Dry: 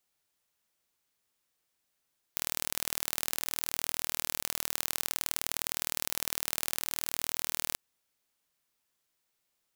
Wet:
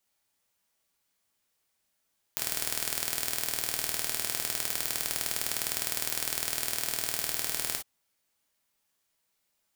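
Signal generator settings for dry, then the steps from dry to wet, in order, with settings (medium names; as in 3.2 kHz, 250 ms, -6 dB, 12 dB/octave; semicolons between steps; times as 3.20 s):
pulse train 39.4 per s, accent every 2, -2.5 dBFS 5.40 s
gated-style reverb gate 80 ms flat, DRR 1 dB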